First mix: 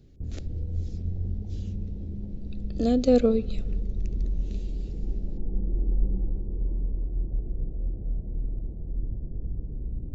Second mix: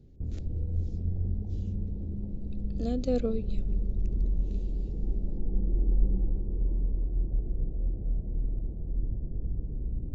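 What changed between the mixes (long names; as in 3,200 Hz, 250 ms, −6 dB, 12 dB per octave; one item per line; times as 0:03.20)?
speech −8.0 dB
reverb: off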